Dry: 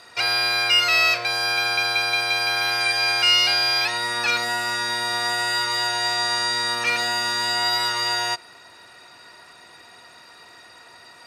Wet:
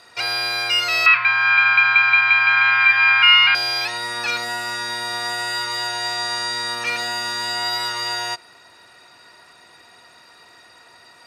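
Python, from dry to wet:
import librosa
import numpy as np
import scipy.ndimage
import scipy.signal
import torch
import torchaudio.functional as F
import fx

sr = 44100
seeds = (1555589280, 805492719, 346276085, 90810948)

y = fx.curve_eq(x, sr, hz=(250.0, 410.0, 700.0, 1000.0, 2500.0, 7300.0), db=(0, -22, -10, 12, 11, -26), at=(1.06, 3.55))
y = y * 10.0 ** (-1.5 / 20.0)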